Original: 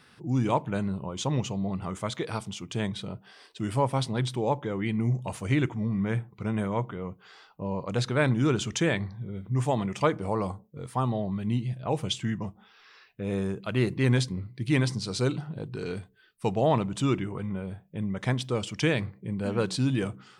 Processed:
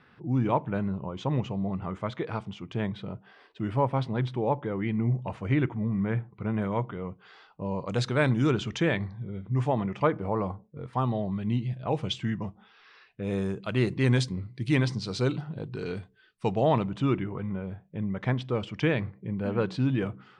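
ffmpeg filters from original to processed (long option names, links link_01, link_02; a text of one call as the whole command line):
ffmpeg -i in.wav -af "asetnsamples=nb_out_samples=441:pad=0,asendcmd='6.62 lowpass f 3800;7.61 lowpass f 7800;8.51 lowpass f 3600;9.68 lowpass f 2200;10.93 lowpass f 4200;13.23 lowpass f 7900;14.75 lowpass f 5000;16.9 lowpass f 2600',lowpass=2300" out.wav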